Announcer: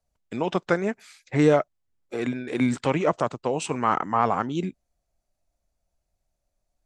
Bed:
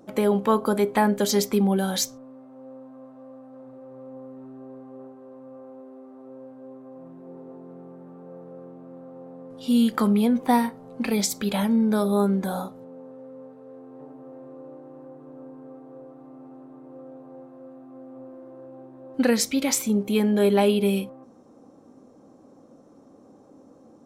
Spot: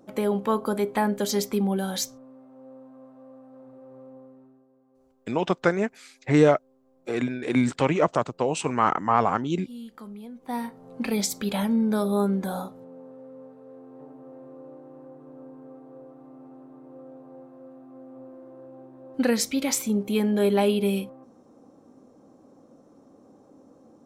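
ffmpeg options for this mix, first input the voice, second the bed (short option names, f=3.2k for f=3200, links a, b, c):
-filter_complex "[0:a]adelay=4950,volume=1dB[a];[1:a]volume=15dB,afade=t=out:st=3.97:d=0.69:silence=0.141254,afade=t=in:st=10.4:d=0.53:silence=0.11885[b];[a][b]amix=inputs=2:normalize=0"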